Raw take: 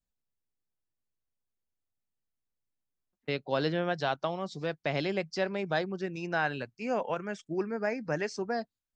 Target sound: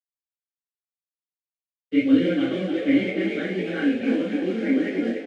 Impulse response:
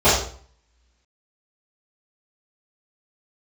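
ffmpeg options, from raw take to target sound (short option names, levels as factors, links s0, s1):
-filter_complex "[0:a]acrossover=split=2900[s0][s1];[s1]acompressor=threshold=0.00282:ratio=4:attack=1:release=60[s2];[s0][s2]amix=inputs=2:normalize=0,equalizer=f=160:t=o:w=0.33:g=-9,equalizer=f=1000:t=o:w=0.33:g=-4,equalizer=f=5000:t=o:w=0.33:g=-6,acrusher=bits=8:dc=4:mix=0:aa=0.000001,asplit=3[s3][s4][s5];[s3]bandpass=f=270:t=q:w=8,volume=1[s6];[s4]bandpass=f=2290:t=q:w=8,volume=0.501[s7];[s5]bandpass=f=3010:t=q:w=8,volume=0.355[s8];[s6][s7][s8]amix=inputs=3:normalize=0,flanger=delay=17.5:depth=6.5:speed=2.3,atempo=1.7,asplit=8[s9][s10][s11][s12][s13][s14][s15][s16];[s10]adelay=291,afreqshift=40,volume=0.473[s17];[s11]adelay=582,afreqshift=80,volume=0.266[s18];[s12]adelay=873,afreqshift=120,volume=0.148[s19];[s13]adelay=1164,afreqshift=160,volume=0.0832[s20];[s14]adelay=1455,afreqshift=200,volume=0.0468[s21];[s15]adelay=1746,afreqshift=240,volume=0.026[s22];[s16]adelay=2037,afreqshift=280,volume=0.0146[s23];[s9][s17][s18][s19][s20][s21][s22][s23]amix=inputs=8:normalize=0[s24];[1:a]atrim=start_sample=2205,asetrate=57330,aresample=44100[s25];[s24][s25]afir=irnorm=-1:irlink=0,volume=1.58"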